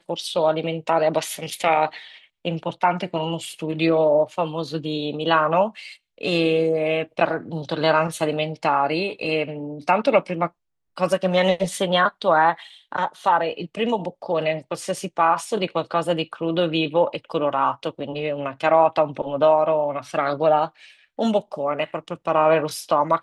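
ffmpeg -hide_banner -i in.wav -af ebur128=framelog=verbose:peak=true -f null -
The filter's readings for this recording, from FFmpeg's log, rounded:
Integrated loudness:
  I:         -22.2 LUFS
  Threshold: -32.3 LUFS
Loudness range:
  LRA:         2.5 LU
  Threshold: -42.3 LUFS
  LRA low:   -23.6 LUFS
  LRA high:  -21.1 LUFS
True peak:
  Peak:       -4.3 dBFS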